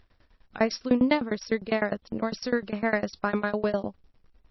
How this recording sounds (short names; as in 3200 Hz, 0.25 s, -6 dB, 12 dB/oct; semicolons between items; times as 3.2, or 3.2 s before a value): a quantiser's noise floor 12-bit, dither none; tremolo saw down 9.9 Hz, depth 100%; MP3